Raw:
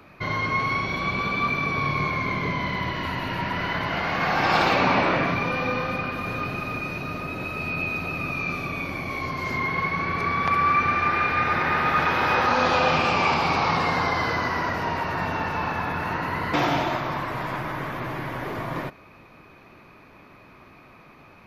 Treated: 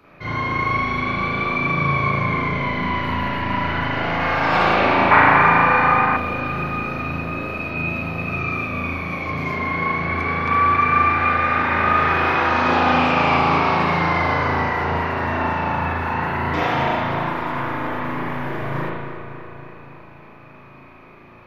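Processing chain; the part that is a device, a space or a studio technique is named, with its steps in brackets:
dub delay into a spring reverb (feedback echo with a low-pass in the loop 280 ms, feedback 68%, low-pass 4,000 Hz, level −9 dB; spring reverb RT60 1 s, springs 36 ms, chirp 65 ms, DRR −7.5 dB)
0:05.11–0:06.17: flat-topped bell 1,300 Hz +9.5 dB
level −5 dB

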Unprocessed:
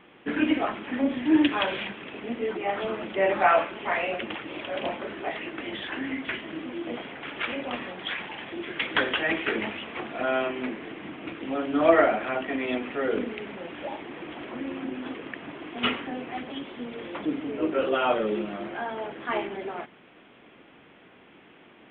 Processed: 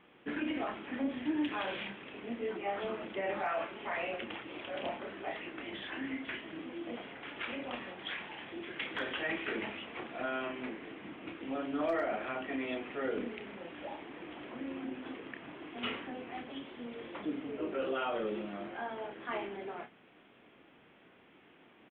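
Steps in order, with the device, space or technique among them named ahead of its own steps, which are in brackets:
clipper into limiter (hard clipping −10 dBFS, distortion −28 dB; brickwall limiter −18 dBFS, peak gain reduction 8 dB)
double-tracking delay 30 ms −8 dB
level −8.5 dB

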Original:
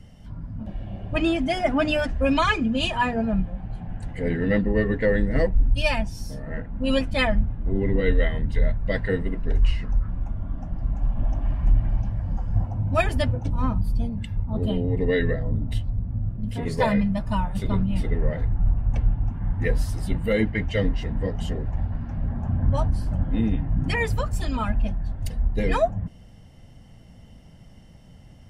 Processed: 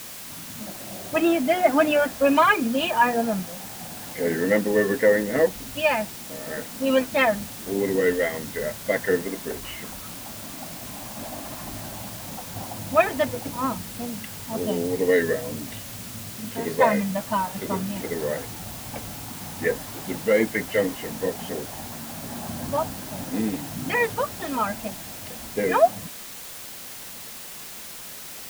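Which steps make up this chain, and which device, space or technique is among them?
wax cylinder (band-pass filter 320–2,200 Hz; tape wow and flutter; white noise bed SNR 13 dB)
level +5 dB

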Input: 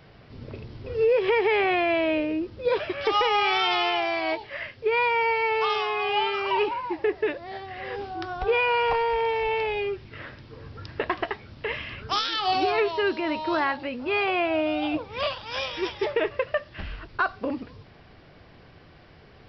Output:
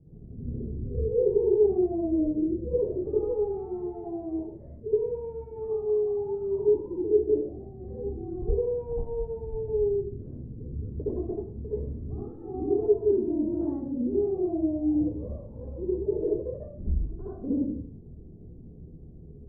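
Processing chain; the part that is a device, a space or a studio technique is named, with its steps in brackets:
next room (low-pass filter 340 Hz 24 dB per octave; convolution reverb RT60 0.55 s, pre-delay 59 ms, DRR −9 dB)
level −2 dB

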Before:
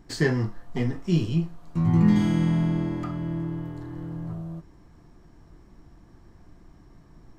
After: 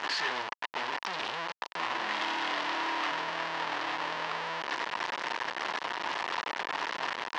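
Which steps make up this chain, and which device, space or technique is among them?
0:01.79–0:03.11: comb filter 2.8 ms, depth 87%
home computer beeper (sign of each sample alone; loudspeaker in its box 710–4,900 Hz, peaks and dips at 970 Hz +8 dB, 1,800 Hz +6 dB, 2,900 Hz +4 dB)

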